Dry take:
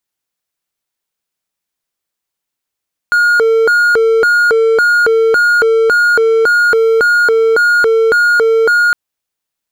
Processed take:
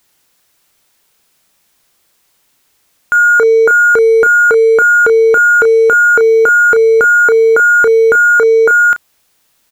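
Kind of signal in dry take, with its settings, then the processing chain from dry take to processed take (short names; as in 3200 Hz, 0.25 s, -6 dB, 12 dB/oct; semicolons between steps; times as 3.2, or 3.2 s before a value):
siren hi-lo 450–1430 Hz 1.8/s triangle -5 dBFS 5.81 s
power-law curve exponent 0.7; doubler 33 ms -10.5 dB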